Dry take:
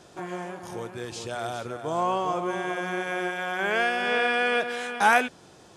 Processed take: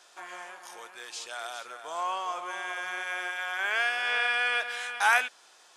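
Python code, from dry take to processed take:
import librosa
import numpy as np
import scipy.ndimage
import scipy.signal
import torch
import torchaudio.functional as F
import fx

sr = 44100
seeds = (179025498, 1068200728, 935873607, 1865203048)

y = scipy.signal.sosfilt(scipy.signal.butter(2, 1100.0, 'highpass', fs=sr, output='sos'), x)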